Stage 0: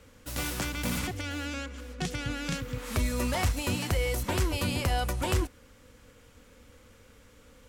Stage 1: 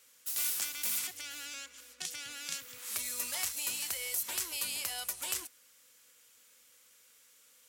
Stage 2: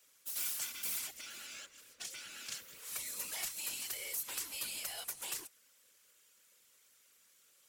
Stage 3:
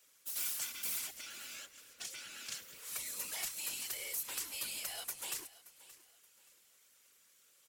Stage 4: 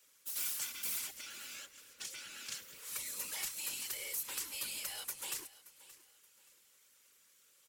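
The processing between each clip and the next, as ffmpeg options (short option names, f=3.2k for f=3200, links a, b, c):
-af "aderivative,volume=3.5dB"
-af "acrusher=bits=4:mode=log:mix=0:aa=0.000001,afftfilt=real='hypot(re,im)*cos(2*PI*random(0))':imag='hypot(re,im)*sin(2*PI*random(1))':win_size=512:overlap=0.75,volume=1dB"
-af "aecho=1:1:576|1152|1728:0.126|0.0403|0.0129"
-af "asuperstop=centerf=690:order=4:qfactor=6.3"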